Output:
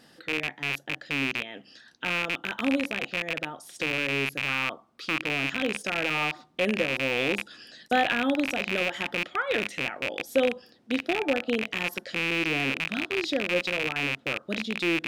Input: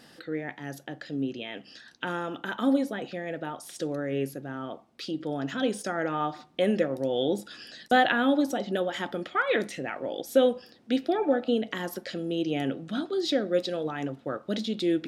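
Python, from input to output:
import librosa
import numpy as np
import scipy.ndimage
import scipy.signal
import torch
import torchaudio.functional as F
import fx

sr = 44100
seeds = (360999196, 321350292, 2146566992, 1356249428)

y = fx.rattle_buzz(x, sr, strikes_db=-42.0, level_db=-13.0)
y = fx.peak_eq(y, sr, hz=1200.0, db=9.5, octaves=0.52, at=(4.48, 5.19))
y = F.gain(torch.from_numpy(y), -2.5).numpy()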